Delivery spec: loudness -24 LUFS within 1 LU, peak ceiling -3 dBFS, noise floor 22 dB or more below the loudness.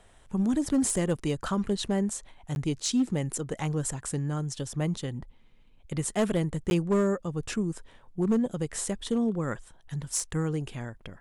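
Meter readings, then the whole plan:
clipped 0.6%; flat tops at -19.0 dBFS; dropouts 2; longest dropout 11 ms; loudness -29.5 LUFS; peak -19.0 dBFS; loudness target -24.0 LUFS
-> clip repair -19 dBFS; interpolate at 2.55/6.7, 11 ms; gain +5.5 dB

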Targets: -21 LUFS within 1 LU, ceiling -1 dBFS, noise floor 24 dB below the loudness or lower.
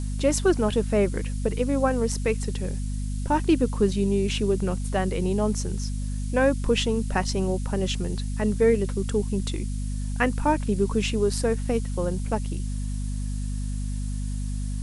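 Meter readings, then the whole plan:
hum 50 Hz; harmonics up to 250 Hz; hum level -26 dBFS; noise floor -29 dBFS; noise floor target -50 dBFS; loudness -26.0 LUFS; peak -8.5 dBFS; loudness target -21.0 LUFS
-> notches 50/100/150/200/250 Hz; denoiser 21 dB, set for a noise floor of -29 dBFS; gain +5 dB

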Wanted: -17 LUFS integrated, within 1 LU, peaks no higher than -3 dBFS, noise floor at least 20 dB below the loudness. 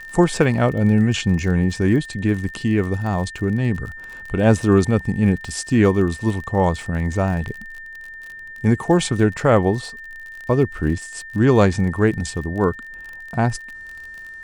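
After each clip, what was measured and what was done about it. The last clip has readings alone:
ticks 41/s; steady tone 1800 Hz; tone level -34 dBFS; loudness -19.5 LUFS; peak -1.0 dBFS; loudness target -17.0 LUFS
-> de-click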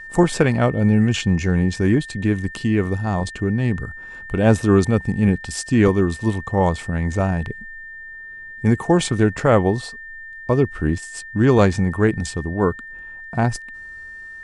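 ticks 0.14/s; steady tone 1800 Hz; tone level -34 dBFS
-> notch 1800 Hz, Q 30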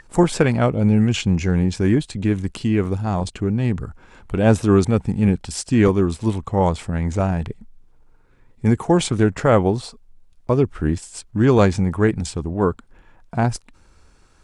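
steady tone none; loudness -20.0 LUFS; peak -1.0 dBFS; loudness target -17.0 LUFS
-> gain +3 dB; limiter -3 dBFS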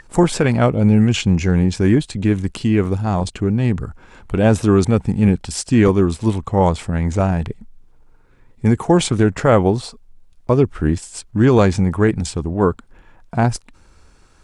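loudness -17.5 LUFS; peak -3.0 dBFS; noise floor -50 dBFS

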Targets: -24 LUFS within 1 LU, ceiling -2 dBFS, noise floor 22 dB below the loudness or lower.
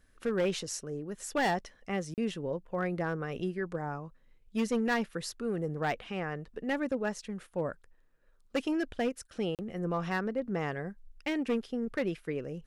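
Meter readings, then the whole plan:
clipped 0.9%; flat tops at -24.0 dBFS; dropouts 2; longest dropout 38 ms; loudness -34.0 LUFS; peak -24.0 dBFS; loudness target -24.0 LUFS
-> clip repair -24 dBFS; interpolate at 2.14/9.55, 38 ms; gain +10 dB

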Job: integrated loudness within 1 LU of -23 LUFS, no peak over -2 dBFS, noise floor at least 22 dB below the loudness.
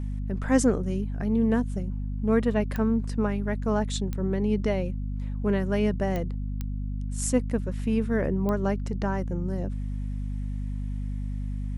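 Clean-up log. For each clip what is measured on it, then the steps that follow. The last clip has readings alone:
clicks 5; hum 50 Hz; harmonics up to 250 Hz; hum level -28 dBFS; loudness -28.0 LUFS; peak -9.5 dBFS; loudness target -23.0 LUFS
-> de-click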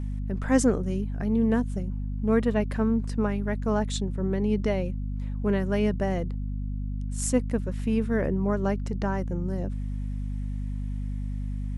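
clicks 0; hum 50 Hz; harmonics up to 250 Hz; hum level -28 dBFS
-> de-hum 50 Hz, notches 5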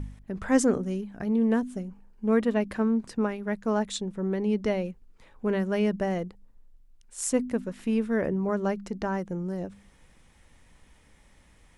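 hum none; loudness -28.0 LUFS; peak -11.0 dBFS; loudness target -23.0 LUFS
-> gain +5 dB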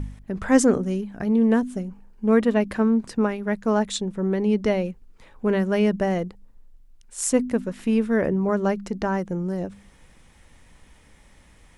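loudness -23.0 LUFS; peak -6.0 dBFS; noise floor -54 dBFS

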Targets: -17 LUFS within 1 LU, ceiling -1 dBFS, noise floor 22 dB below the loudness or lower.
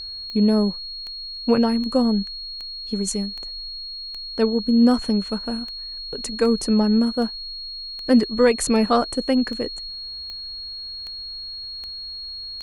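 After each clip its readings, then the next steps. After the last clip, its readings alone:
clicks 17; steady tone 4300 Hz; tone level -31 dBFS; loudness -23.0 LUFS; peak -6.0 dBFS; loudness target -17.0 LUFS
-> de-click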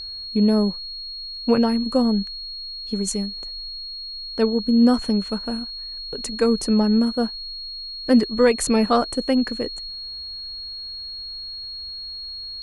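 clicks 0; steady tone 4300 Hz; tone level -31 dBFS
-> notch 4300 Hz, Q 30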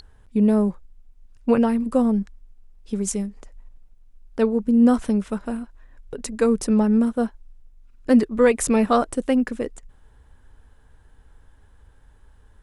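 steady tone none; loudness -21.0 LUFS; peak -6.5 dBFS; loudness target -17.0 LUFS
-> gain +4 dB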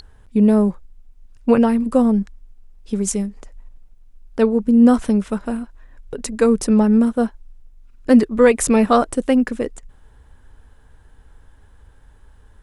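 loudness -17.0 LUFS; peak -2.5 dBFS; noise floor -49 dBFS

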